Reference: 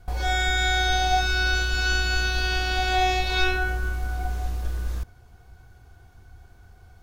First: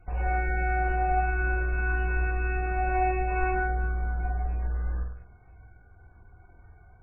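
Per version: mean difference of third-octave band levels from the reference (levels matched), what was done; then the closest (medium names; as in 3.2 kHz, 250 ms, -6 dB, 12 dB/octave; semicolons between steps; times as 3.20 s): 10.0 dB: on a send: flutter echo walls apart 8.3 m, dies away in 0.72 s; on the sum: trim -4.5 dB; MP3 8 kbps 11.025 kHz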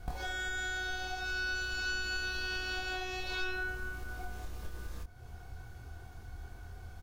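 5.5 dB: compression 4:1, threshold -38 dBFS, peak gain reduction 18 dB; doubling 25 ms -4.5 dB; trim +1.5 dB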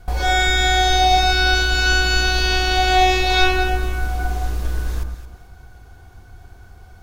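1.5 dB: peaking EQ 100 Hz -3.5 dB; on a send: echo whose repeats swap between lows and highs 110 ms, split 1.3 kHz, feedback 52%, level -5.5 dB; on the sum: trim +7 dB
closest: third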